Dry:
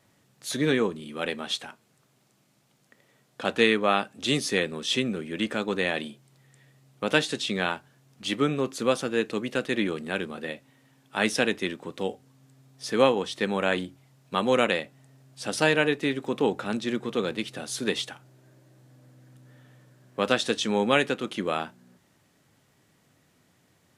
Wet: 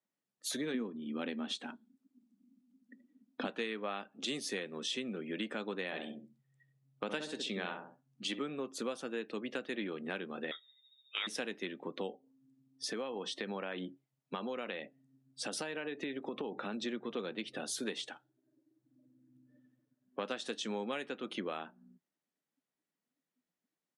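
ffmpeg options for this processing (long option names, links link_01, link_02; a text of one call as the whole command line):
ffmpeg -i in.wav -filter_complex "[0:a]asettb=1/sr,asplit=3[link_01][link_02][link_03];[link_01]atrim=end=0.744[link_04];[link_02]atrim=start=0.74:end=3.47,asetpts=PTS-STARTPTS,afade=type=in:duration=0.004:curve=qsin,afade=type=out:start_time=2.726:duration=0.004:curve=qsin,equalizer=frequency=250:width=2.4:gain=14[link_05];[link_03]atrim=start=3.466[link_06];[link_04][link_05]acrossfade=duration=0.004:curve1=hsin:curve2=qsin[link_07];[link_07][link_06]acrossfade=duration=0.004:curve1=qsin:curve2=hsin,asplit=3[link_08][link_09][link_10];[link_08]afade=type=out:start_time=5.91:duration=0.02[link_11];[link_09]asplit=2[link_12][link_13];[link_13]adelay=66,lowpass=frequency=1100:poles=1,volume=-5dB,asplit=2[link_14][link_15];[link_15]adelay=66,lowpass=frequency=1100:poles=1,volume=0.41,asplit=2[link_16][link_17];[link_17]adelay=66,lowpass=frequency=1100:poles=1,volume=0.41,asplit=2[link_18][link_19];[link_19]adelay=66,lowpass=frequency=1100:poles=1,volume=0.41,asplit=2[link_20][link_21];[link_21]adelay=66,lowpass=frequency=1100:poles=1,volume=0.41[link_22];[link_12][link_14][link_16][link_18][link_20][link_22]amix=inputs=6:normalize=0,afade=type=in:start_time=5.91:duration=0.02,afade=type=out:start_time=8.38:duration=0.02[link_23];[link_10]afade=type=in:start_time=8.38:duration=0.02[link_24];[link_11][link_23][link_24]amix=inputs=3:normalize=0,asettb=1/sr,asplit=3[link_25][link_26][link_27];[link_25]atrim=end=10.514[link_28];[link_26]atrim=start=10.51:end=11.27,asetpts=PTS-STARTPTS,afade=type=in:duration=0.004:curve=qsin,afade=type=out:start_time=0.756:duration=0.004:curve=qsin,lowpass=frequency=3300:width_type=q:width=0.5098,lowpass=frequency=3300:width_type=q:width=0.6013,lowpass=frequency=3300:width_type=q:width=0.9,lowpass=frequency=3300:width_type=q:width=2.563,afreqshift=-3900[link_29];[link_27]atrim=start=11.266[link_30];[link_28][link_29]acrossfade=duration=0.004:curve1=hsin:curve2=qsin[link_31];[link_31][link_30]acrossfade=duration=0.004:curve1=qsin:curve2=hsin,asettb=1/sr,asplit=3[link_32][link_33][link_34];[link_32]atrim=end=12.904[link_35];[link_33]atrim=start=12.9:end=16.86,asetpts=PTS-STARTPTS,afade=type=in:duration=0.004:curve=qsin,afade=type=out:start_time=3.956:duration=0.004:curve=qsin,acompressor=threshold=-31dB:ratio=3:attack=3.2:release=140:knee=1:detection=peak[link_36];[link_34]atrim=start=16.856[link_37];[link_35][link_36]acrossfade=duration=0.004:curve1=hsin:curve2=qsin[link_38];[link_38][link_37]acrossfade=duration=0.004:curve1=qsin:curve2=hsin,asettb=1/sr,asplit=3[link_39][link_40][link_41];[link_39]atrim=end=18.114[link_42];[link_40]atrim=start=18.11:end=20.23,asetpts=PTS-STARTPTS,afade=type=in:duration=0.004:curve=qsin,afade=type=out:start_time=2.116:duration=0.004:curve=qsin,aeval=exprs='if(lt(val(0),0),0.708*val(0),val(0))':channel_layout=same[link_43];[link_41]atrim=start=20.226[link_44];[link_42][link_43]acrossfade=duration=0.004:curve1=hsin:curve2=qsin[link_45];[link_45][link_44]acrossfade=duration=0.004:curve1=qsin:curve2=hsin,highpass=frequency=180:width=0.5412,highpass=frequency=180:width=1.3066,afftdn=noise_reduction=28:noise_floor=-48,acompressor=threshold=-36dB:ratio=6" out.wav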